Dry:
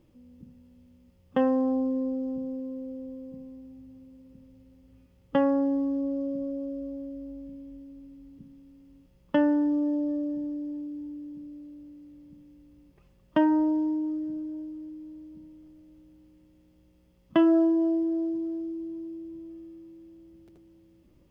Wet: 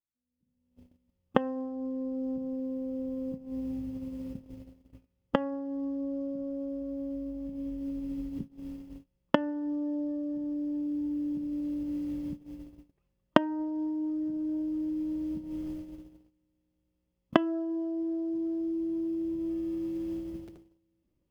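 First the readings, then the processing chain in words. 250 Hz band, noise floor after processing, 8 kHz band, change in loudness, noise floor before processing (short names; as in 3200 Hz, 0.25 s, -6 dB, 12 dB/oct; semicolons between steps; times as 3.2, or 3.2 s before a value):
-3.5 dB, -79 dBFS, n/a, -5.5 dB, -61 dBFS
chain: recorder AGC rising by 39 dB/s; gate -22 dBFS, range -35 dB; gain -11.5 dB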